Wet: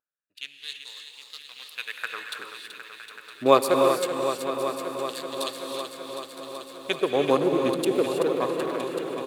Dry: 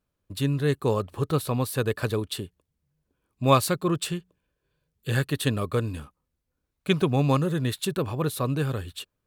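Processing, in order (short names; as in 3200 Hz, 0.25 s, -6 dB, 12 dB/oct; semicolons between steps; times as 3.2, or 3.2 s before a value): Wiener smoothing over 41 samples; LFO high-pass sine 0.23 Hz 340–4400 Hz; feedback echo 0.963 s, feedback 44%, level -14 dB; non-linear reverb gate 0.35 s rising, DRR 4 dB; vibrato 1.6 Hz 5.8 cents; lo-fi delay 0.38 s, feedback 80%, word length 10-bit, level -9 dB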